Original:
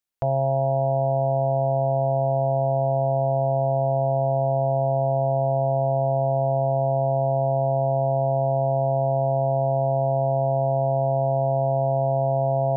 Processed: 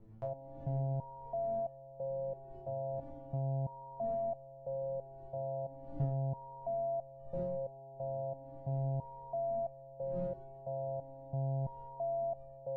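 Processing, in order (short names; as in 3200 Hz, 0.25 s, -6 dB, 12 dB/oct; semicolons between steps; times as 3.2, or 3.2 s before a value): wind noise 160 Hz -35 dBFS; stepped resonator 3 Hz 110–600 Hz; gain -4 dB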